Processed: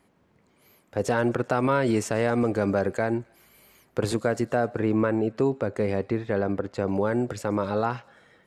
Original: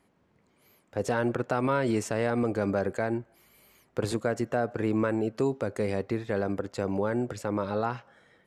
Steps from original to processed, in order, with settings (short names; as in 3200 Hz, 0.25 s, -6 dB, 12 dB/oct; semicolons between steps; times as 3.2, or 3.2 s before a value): 4.69–6.89 LPF 2900 Hz 6 dB/oct; thin delay 0.132 s, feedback 69%, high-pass 2300 Hz, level -24 dB; gain +3.5 dB